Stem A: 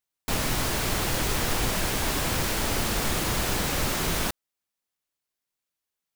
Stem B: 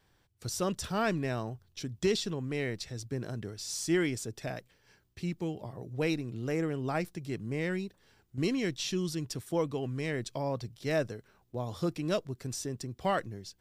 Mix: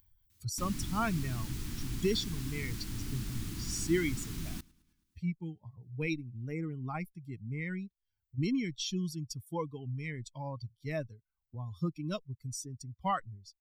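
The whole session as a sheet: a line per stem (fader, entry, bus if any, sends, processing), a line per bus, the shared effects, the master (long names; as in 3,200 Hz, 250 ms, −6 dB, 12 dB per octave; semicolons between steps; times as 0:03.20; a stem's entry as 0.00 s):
−9.0 dB, 0.30 s, no send, echo send −24 dB, drawn EQ curve 300 Hz 0 dB, 540 Hz −27 dB, 1,100 Hz −15 dB, 4,700 Hz −8 dB
+1.0 dB, 0.00 s, no send, no echo send, spectral dynamics exaggerated over time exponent 2; comb filter 0.9 ms, depth 57%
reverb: not used
echo: repeating echo 107 ms, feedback 38%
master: upward compression, threshold −43 dBFS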